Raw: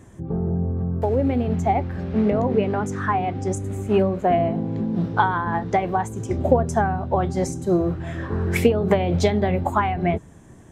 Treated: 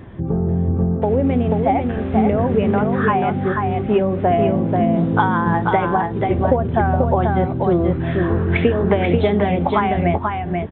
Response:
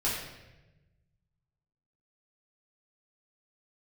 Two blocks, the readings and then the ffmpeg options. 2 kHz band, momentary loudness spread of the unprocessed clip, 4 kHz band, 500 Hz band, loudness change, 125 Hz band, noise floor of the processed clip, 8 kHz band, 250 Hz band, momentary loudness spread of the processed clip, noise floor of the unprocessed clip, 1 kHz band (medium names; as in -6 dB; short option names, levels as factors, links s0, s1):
+4.5 dB, 6 LU, +2.0 dB, +4.0 dB, +4.5 dB, +5.0 dB, -24 dBFS, under -40 dB, +5.0 dB, 3 LU, -46 dBFS, +4.0 dB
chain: -filter_complex "[0:a]acompressor=threshold=0.0398:ratio=2,asplit=2[s0][s1];[s1]aecho=0:1:486:0.631[s2];[s0][s2]amix=inputs=2:normalize=0,aresample=8000,aresample=44100,volume=2.82"